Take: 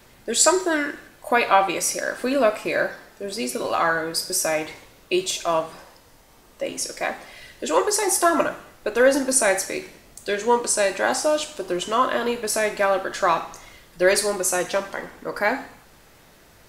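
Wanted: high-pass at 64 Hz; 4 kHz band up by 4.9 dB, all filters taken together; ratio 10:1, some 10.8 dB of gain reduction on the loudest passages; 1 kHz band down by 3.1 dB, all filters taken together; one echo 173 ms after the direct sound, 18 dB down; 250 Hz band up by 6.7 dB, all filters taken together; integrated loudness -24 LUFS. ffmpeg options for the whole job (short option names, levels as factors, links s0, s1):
-af "highpass=64,equalizer=f=250:t=o:g=9,equalizer=f=1000:t=o:g=-5,equalizer=f=4000:t=o:g=6.5,acompressor=threshold=0.0891:ratio=10,aecho=1:1:173:0.126,volume=1.26"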